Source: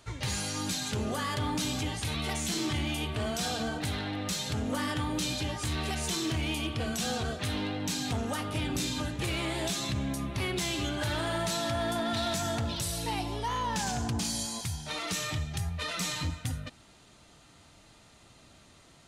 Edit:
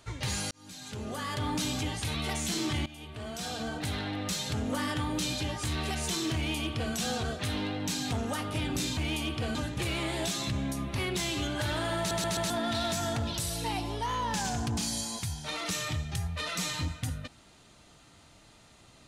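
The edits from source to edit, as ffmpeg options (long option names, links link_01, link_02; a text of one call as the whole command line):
ffmpeg -i in.wav -filter_complex "[0:a]asplit=9[link_01][link_02][link_03][link_04][link_05][link_06][link_07][link_08][link_09];[link_01]atrim=end=0.51,asetpts=PTS-STARTPTS,afade=type=out:start_time=0.506:duration=0.004:curve=hsin[link_10];[link_02]atrim=start=0.51:end=2.86,asetpts=PTS-STARTPTS,afade=type=in:duration=1.02,afade=type=out:start_time=2.346:duration=0.004:curve=hsin:silence=0.125893[link_11];[link_03]atrim=start=2.86:end=8.972,asetpts=PTS-STARTPTS,afade=type=in:duration=1.12:silence=0.125893[link_12];[link_04]atrim=start=6.348:end=6.932[link_13];[link_05]atrim=start=8.968:end=11.532[link_14];[link_06]atrim=start=11.398:end=11.532[link_15];[link_07]atrim=start=11.398:end=11.532[link_16];[link_08]atrim=start=11.398:end=11.532[link_17];[link_09]atrim=start=11.918[link_18];[link_10][link_11][link_12]concat=n=3:v=0:a=1[link_19];[link_19][link_13]acrossfade=duration=0.004:curve1=hsin:curve2=hsin[link_20];[link_20][link_14]acrossfade=duration=0.004:curve1=hsin:curve2=hsin[link_21];[link_21][link_15]acrossfade=duration=0.004:curve1=hsin:curve2=hsin[link_22];[link_22][link_16]acrossfade=duration=0.004:curve1=hsin:curve2=hsin[link_23];[link_23][link_17]acrossfade=duration=0.004:curve1=hsin:curve2=hsin[link_24];[link_24][link_18]acrossfade=duration=0.004:curve1=hsin:curve2=hsin" out.wav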